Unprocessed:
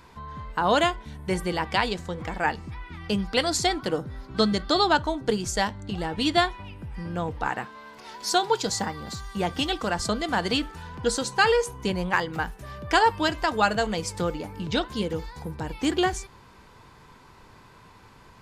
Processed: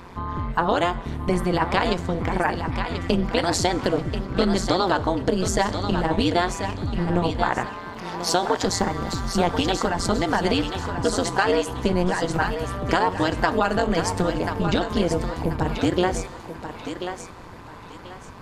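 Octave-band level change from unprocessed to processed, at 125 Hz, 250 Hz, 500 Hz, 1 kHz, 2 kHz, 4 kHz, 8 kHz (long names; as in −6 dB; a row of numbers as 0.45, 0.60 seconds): +7.0, +5.0, +4.0, +2.0, +0.5, −0.5, +2.0 decibels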